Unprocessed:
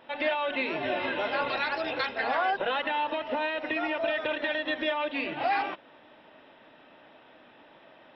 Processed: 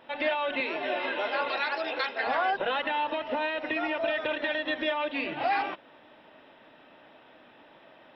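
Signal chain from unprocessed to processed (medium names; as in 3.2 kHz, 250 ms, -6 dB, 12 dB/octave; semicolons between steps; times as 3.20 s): 0.60–2.27 s: high-pass 320 Hz 12 dB/octave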